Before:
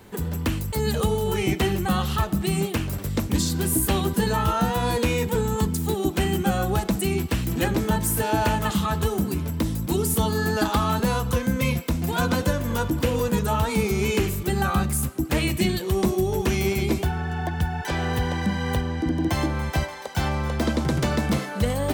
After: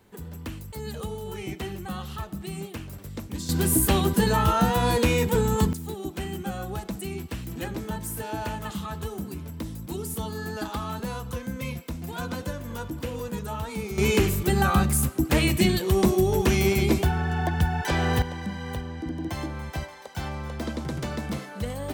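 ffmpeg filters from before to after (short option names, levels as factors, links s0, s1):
-af "asetnsamples=n=441:p=0,asendcmd='3.49 volume volume 1dB;5.73 volume volume -9.5dB;13.98 volume volume 1.5dB;18.22 volume volume -8dB',volume=0.282"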